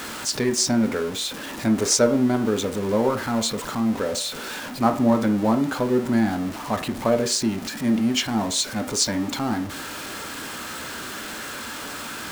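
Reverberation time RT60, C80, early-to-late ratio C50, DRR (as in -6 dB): 0.45 s, 18.0 dB, 13.0 dB, 6.0 dB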